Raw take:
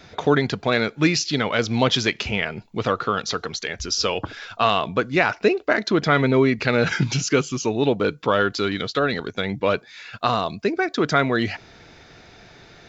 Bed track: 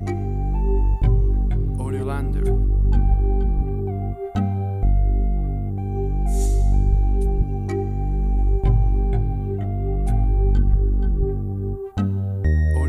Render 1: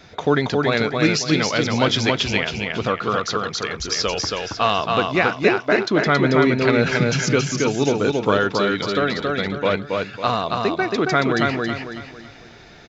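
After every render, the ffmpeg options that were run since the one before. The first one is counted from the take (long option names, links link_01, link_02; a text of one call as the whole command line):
ffmpeg -i in.wav -af "aecho=1:1:275|550|825|1100|1375:0.708|0.255|0.0917|0.033|0.0119" out.wav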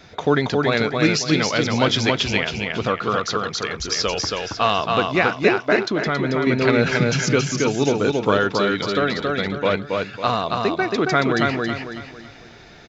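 ffmpeg -i in.wav -filter_complex "[0:a]asettb=1/sr,asplit=3[link_01][link_02][link_03];[link_01]atrim=end=5.794[link_04];[link_02]atrim=start=5.79:end=6.47,asetpts=PTS-STARTPTS,afade=type=in:duration=0.004:curve=qsin,afade=type=out:start_time=0.676:duration=0.004:curve=qsin,acompressor=threshold=-19dB:ratio=2.5:attack=3.2:release=140:knee=1:detection=peak[link_05];[link_03]atrim=start=6.466[link_06];[link_04][link_05]acrossfade=duration=0.004:curve1=hsin:curve2=qsin[link_07];[link_07][link_06]acrossfade=duration=0.004:curve1=qsin:curve2=hsin" out.wav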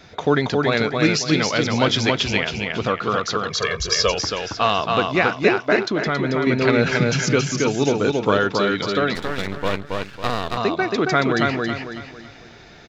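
ffmpeg -i in.wav -filter_complex "[0:a]asettb=1/sr,asplit=3[link_01][link_02][link_03];[link_01]atrim=end=3.504[link_04];[link_02]atrim=start=3.5:end=4.12,asetpts=PTS-STARTPTS,afade=type=in:duration=0.004:curve=qsin,afade=type=out:start_time=0.616:duration=0.004:curve=qsin,aecho=1:1:1.8:0.97,atrim=end_sample=27342[link_05];[link_03]atrim=start=4.116[link_06];[link_04][link_05]acrossfade=duration=0.004:curve1=hsin:curve2=qsin[link_07];[link_07][link_06]acrossfade=duration=0.004:curve1=qsin:curve2=hsin,asettb=1/sr,asplit=3[link_08][link_09][link_10];[link_08]atrim=end=9.154[link_11];[link_09]atrim=start=9.15:end=10.57,asetpts=PTS-STARTPTS,afade=type=in:duration=0.004:curve=qsin,afade=type=out:start_time=1.416:duration=0.004:curve=qsin,aeval=exprs='max(val(0),0)':channel_layout=same[link_12];[link_10]atrim=start=10.566[link_13];[link_11][link_12]acrossfade=duration=0.004:curve1=hsin:curve2=qsin[link_14];[link_14][link_13]acrossfade=duration=0.004:curve1=qsin:curve2=hsin" out.wav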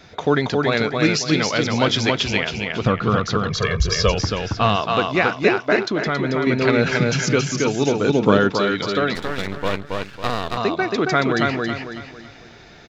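ffmpeg -i in.wav -filter_complex "[0:a]asettb=1/sr,asplit=3[link_01][link_02][link_03];[link_01]atrim=end=2.864[link_04];[link_02]atrim=start=2.86:end=4.76,asetpts=PTS-STARTPTS,afade=type=in:duration=0.004:curve=qsin,afade=type=out:start_time=1.896:duration=0.004:curve=qsin,bass=frequency=250:gain=12,treble=frequency=4000:gain=-4[link_05];[link_03]atrim=start=4.756[link_06];[link_04][link_05]acrossfade=duration=0.004:curve1=hsin:curve2=qsin[link_07];[link_07][link_06]acrossfade=duration=0.004:curve1=qsin:curve2=hsin,asettb=1/sr,asplit=3[link_08][link_09][link_10];[link_08]atrim=end=8.094[link_11];[link_09]atrim=start=8.09:end=8.5,asetpts=PTS-STARTPTS,afade=type=in:duration=0.004:curve=qsin,afade=type=out:start_time=0.406:duration=0.004:curve=qsin,equalizer=frequency=200:width_type=o:width=1.7:gain=8[link_12];[link_10]atrim=start=8.496[link_13];[link_11][link_12]acrossfade=duration=0.004:curve1=hsin:curve2=qsin[link_14];[link_14][link_13]acrossfade=duration=0.004:curve1=qsin:curve2=hsin" out.wav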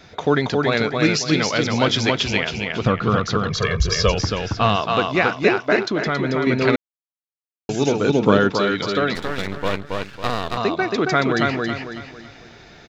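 ffmpeg -i in.wav -filter_complex "[0:a]asplit=3[link_01][link_02][link_03];[link_01]atrim=end=6.76,asetpts=PTS-STARTPTS,afade=type=out:start_time=6.756:duration=0.004:curve=hsin[link_04];[link_02]atrim=start=6.76:end=7.69,asetpts=PTS-STARTPTS,volume=0[link_05];[link_03]atrim=start=7.69,asetpts=PTS-STARTPTS,afade=type=in:duration=0.004:curve=hsin[link_06];[link_04][link_05][link_06]concat=n=3:v=0:a=1" out.wav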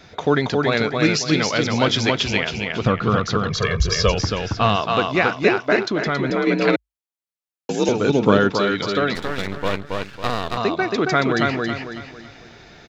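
ffmpeg -i in.wav -filter_complex "[0:a]asettb=1/sr,asplit=3[link_01][link_02][link_03];[link_01]atrim=end=6.304[link_04];[link_02]atrim=start=6.3:end=7.89,asetpts=PTS-STARTPTS,afade=type=in:duration=0.004:curve=qsin,afade=type=out:start_time=1.586:duration=0.004:curve=qsin,afreqshift=51[link_05];[link_03]atrim=start=7.886[link_06];[link_04][link_05]acrossfade=duration=0.004:curve1=hsin:curve2=qsin[link_07];[link_07][link_06]acrossfade=duration=0.004:curve1=qsin:curve2=hsin" out.wav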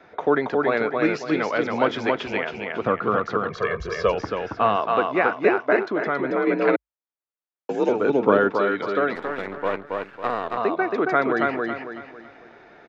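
ffmpeg -i in.wav -filter_complex "[0:a]acrossover=split=260 2100:gain=0.141 1 0.0891[link_01][link_02][link_03];[link_01][link_02][link_03]amix=inputs=3:normalize=0" out.wav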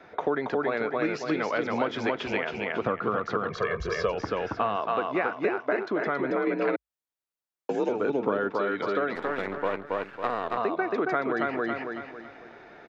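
ffmpeg -i in.wav -af "acompressor=threshold=-24dB:ratio=4" out.wav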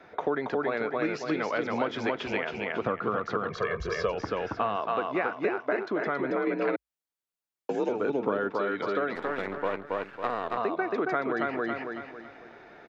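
ffmpeg -i in.wav -af "volume=-1.5dB" out.wav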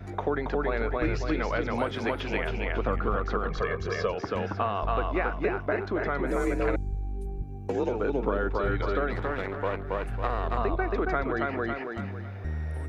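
ffmpeg -i in.wav -i bed.wav -filter_complex "[1:a]volume=-14.5dB[link_01];[0:a][link_01]amix=inputs=2:normalize=0" out.wav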